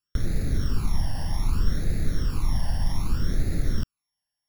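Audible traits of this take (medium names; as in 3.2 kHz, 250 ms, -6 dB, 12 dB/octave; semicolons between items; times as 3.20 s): a buzz of ramps at a fixed pitch in blocks of 8 samples; phasing stages 12, 0.64 Hz, lowest notch 400–1000 Hz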